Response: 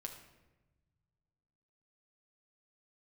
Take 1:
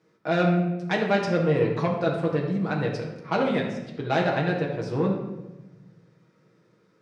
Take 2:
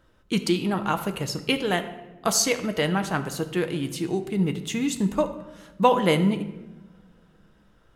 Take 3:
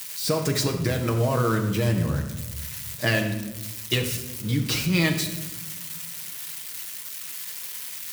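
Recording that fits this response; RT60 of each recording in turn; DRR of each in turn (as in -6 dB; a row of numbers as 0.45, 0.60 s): 3; 1.1, 1.2, 1.1 s; -2.0, 7.0, 2.5 dB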